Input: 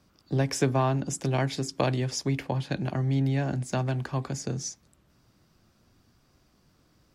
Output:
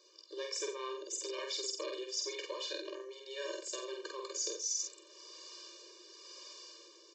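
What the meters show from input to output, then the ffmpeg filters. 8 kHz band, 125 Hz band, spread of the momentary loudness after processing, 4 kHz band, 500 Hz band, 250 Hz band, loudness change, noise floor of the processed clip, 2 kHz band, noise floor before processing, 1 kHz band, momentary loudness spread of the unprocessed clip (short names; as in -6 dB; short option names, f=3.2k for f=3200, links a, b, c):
0.0 dB, under -40 dB, 15 LU, -0.5 dB, -9.0 dB, -21.5 dB, -11.0 dB, -60 dBFS, -10.0 dB, -65 dBFS, -15.0 dB, 6 LU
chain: -filter_complex "[0:a]acrossover=split=460[a][b];[a]aeval=exprs='val(0)*(1-0.5/2+0.5/2*cos(2*PI*1*n/s))':c=same[c];[b]aeval=exprs='val(0)*(1-0.5/2-0.5/2*cos(2*PI*1*n/s))':c=same[d];[c][d]amix=inputs=2:normalize=0,acrossover=split=1200[e][f];[f]alimiter=level_in=3.5dB:limit=-24dB:level=0:latency=1:release=105,volume=-3.5dB[g];[e][g]amix=inputs=2:normalize=0,asoftclip=type=tanh:threshold=-22.5dB,aresample=16000,aresample=44100,highshelf=f=2.6k:g=-8.5,aexciter=amount=5.1:drive=6.8:freq=2.7k,dynaudnorm=f=340:g=5:m=7.5dB,equalizer=f=180:t=o:w=0.62:g=-14.5,aecho=1:1:89:0.251,areverse,acompressor=threshold=-42dB:ratio=8,areverse,asplit=2[h][i];[i]adelay=48,volume=-3dB[j];[h][j]amix=inputs=2:normalize=0,afftfilt=real='re*eq(mod(floor(b*sr/1024/310),2),1)':imag='im*eq(mod(floor(b*sr/1024/310),2),1)':win_size=1024:overlap=0.75,volume=7dB"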